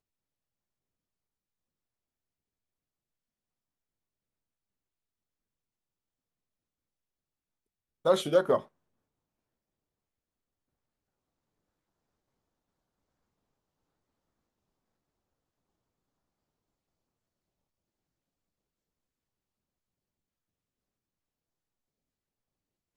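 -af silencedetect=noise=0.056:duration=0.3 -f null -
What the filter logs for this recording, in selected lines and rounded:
silence_start: 0.00
silence_end: 8.06 | silence_duration: 8.06
silence_start: 8.57
silence_end: 22.96 | silence_duration: 14.40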